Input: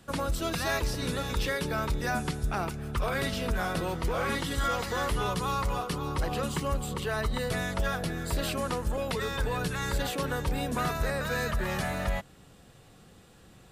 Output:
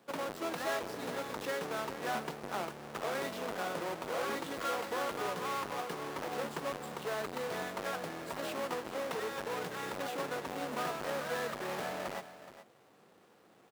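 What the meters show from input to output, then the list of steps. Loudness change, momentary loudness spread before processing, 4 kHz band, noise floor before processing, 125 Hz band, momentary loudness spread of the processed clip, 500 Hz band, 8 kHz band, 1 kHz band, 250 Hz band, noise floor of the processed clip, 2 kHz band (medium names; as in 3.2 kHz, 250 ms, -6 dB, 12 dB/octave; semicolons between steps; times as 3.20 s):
-7.0 dB, 3 LU, -7.5 dB, -55 dBFS, -18.0 dB, 4 LU, -4.0 dB, -8.0 dB, -4.5 dB, -9.0 dB, -63 dBFS, -6.5 dB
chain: square wave that keeps the level; high-pass 370 Hz 12 dB/octave; treble shelf 2.2 kHz -8 dB; delay 422 ms -13.5 dB; trim -6.5 dB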